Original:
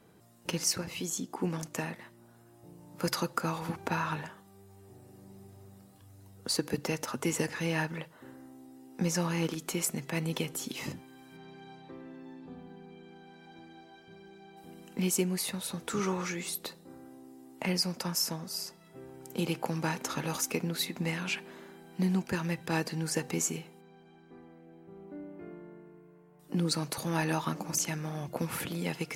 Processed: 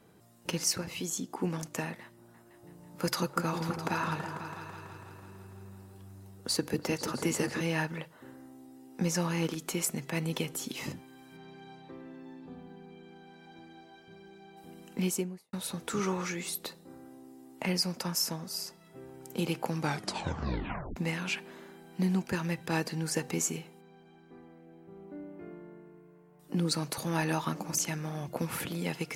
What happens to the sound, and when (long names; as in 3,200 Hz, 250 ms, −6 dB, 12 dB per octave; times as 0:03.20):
0:02.01–0:07.61: echo whose low-pass opens from repeat to repeat 165 ms, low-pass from 400 Hz, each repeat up 2 octaves, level −6 dB
0:15.00–0:15.53: fade out and dull
0:19.80: tape stop 1.16 s